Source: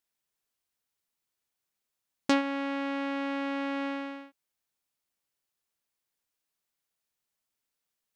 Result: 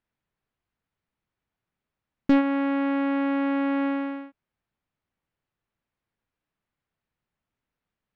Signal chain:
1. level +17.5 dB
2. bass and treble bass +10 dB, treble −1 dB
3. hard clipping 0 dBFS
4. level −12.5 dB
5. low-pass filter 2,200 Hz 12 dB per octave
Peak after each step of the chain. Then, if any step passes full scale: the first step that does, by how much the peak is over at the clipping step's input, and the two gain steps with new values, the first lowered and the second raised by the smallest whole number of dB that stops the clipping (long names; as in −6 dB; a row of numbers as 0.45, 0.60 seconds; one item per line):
+5.0, +8.0, 0.0, −12.5, −12.5 dBFS
step 1, 8.0 dB
step 1 +9.5 dB, step 4 −4.5 dB